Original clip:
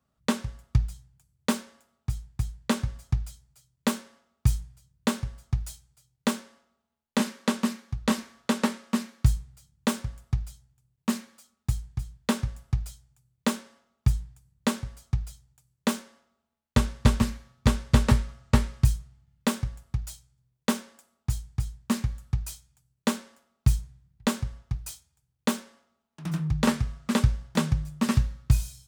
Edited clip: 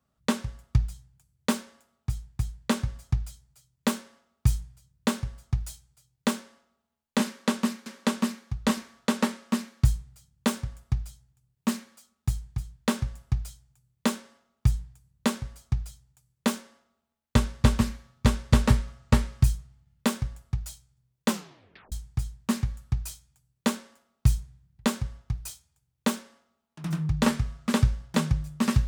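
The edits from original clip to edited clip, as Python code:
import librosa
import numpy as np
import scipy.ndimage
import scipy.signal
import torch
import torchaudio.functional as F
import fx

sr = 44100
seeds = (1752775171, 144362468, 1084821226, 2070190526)

y = fx.edit(x, sr, fx.repeat(start_s=7.27, length_s=0.59, count=2),
    fx.tape_stop(start_s=20.69, length_s=0.64), tone=tone)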